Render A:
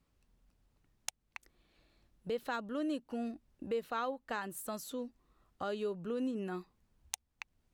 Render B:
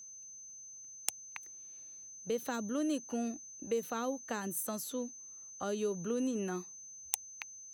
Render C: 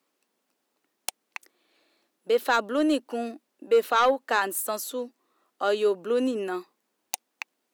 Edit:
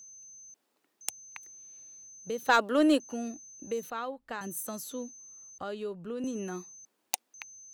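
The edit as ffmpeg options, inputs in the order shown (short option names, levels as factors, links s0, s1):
-filter_complex "[2:a]asplit=3[s0][s1][s2];[0:a]asplit=2[s3][s4];[1:a]asplit=6[s5][s6][s7][s8][s9][s10];[s5]atrim=end=0.542[s11];[s0]atrim=start=0.538:end=1.012[s12];[s6]atrim=start=1.008:end=2.492[s13];[s1]atrim=start=2.488:end=3.002[s14];[s7]atrim=start=2.998:end=3.902[s15];[s3]atrim=start=3.898:end=4.412[s16];[s8]atrim=start=4.408:end=5.582[s17];[s4]atrim=start=5.578:end=6.242[s18];[s9]atrim=start=6.238:end=6.852[s19];[s2]atrim=start=6.848:end=7.342[s20];[s10]atrim=start=7.338[s21];[s11][s12]acrossfade=d=0.004:c1=hsin:c2=hsin[s22];[s22][s13]acrossfade=d=0.004:c1=hsin:c2=hsin[s23];[s23][s14]acrossfade=d=0.004:c1=hsin:c2=hsin[s24];[s24][s15]acrossfade=d=0.004:c1=hsin:c2=hsin[s25];[s25][s16]acrossfade=d=0.004:c1=hsin:c2=hsin[s26];[s26][s17]acrossfade=d=0.004:c1=hsin:c2=hsin[s27];[s27][s18]acrossfade=d=0.004:c1=hsin:c2=hsin[s28];[s28][s19]acrossfade=d=0.004:c1=hsin:c2=hsin[s29];[s29][s20]acrossfade=d=0.004:c1=hsin:c2=hsin[s30];[s30][s21]acrossfade=d=0.004:c1=hsin:c2=hsin"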